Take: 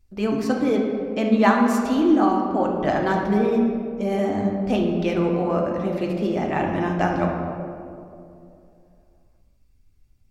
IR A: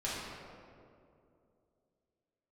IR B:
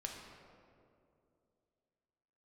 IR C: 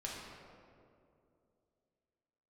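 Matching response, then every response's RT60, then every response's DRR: B; 2.6, 2.6, 2.6 s; -8.5, 0.0, -4.5 dB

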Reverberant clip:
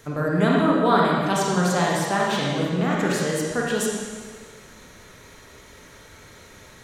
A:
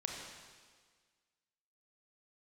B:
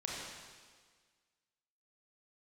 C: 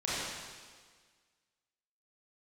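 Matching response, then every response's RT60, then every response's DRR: B; 1.6, 1.6, 1.6 s; 0.0, -4.0, -9.5 dB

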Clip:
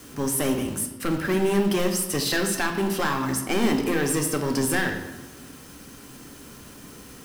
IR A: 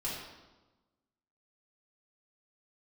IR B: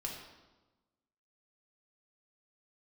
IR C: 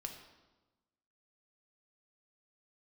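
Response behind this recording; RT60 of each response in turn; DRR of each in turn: C; 1.2, 1.2, 1.1 s; -8.5, -2.0, 3.0 dB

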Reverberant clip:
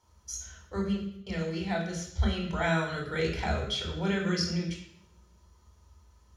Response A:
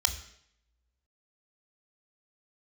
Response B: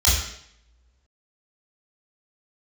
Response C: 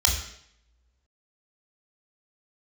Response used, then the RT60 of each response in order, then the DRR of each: C; 0.70, 0.70, 0.70 s; 7.5, -8.5, 0.0 dB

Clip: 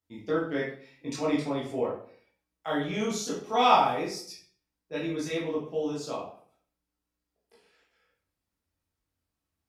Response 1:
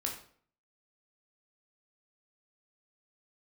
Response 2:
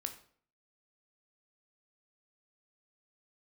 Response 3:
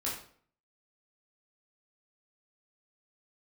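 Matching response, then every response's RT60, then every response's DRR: 3; 0.55, 0.55, 0.55 s; 0.0, 6.0, -6.5 dB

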